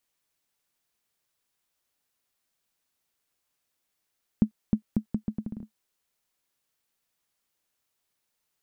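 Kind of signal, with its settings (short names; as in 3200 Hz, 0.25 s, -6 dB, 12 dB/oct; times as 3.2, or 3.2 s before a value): bouncing ball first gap 0.31 s, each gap 0.76, 215 Hz, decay 92 ms -9.5 dBFS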